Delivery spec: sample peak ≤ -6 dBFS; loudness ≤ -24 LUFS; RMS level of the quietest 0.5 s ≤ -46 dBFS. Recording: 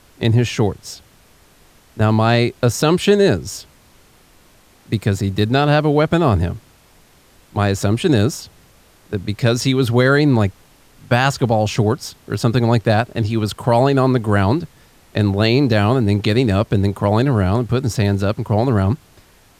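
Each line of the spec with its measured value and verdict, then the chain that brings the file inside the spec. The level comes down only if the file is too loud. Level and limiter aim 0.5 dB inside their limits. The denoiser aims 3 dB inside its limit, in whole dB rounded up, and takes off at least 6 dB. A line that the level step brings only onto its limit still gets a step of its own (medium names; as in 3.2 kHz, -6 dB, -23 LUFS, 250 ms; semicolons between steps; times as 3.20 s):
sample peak -3.0 dBFS: fail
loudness -17.0 LUFS: fail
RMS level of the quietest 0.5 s -50 dBFS: pass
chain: trim -7.5 dB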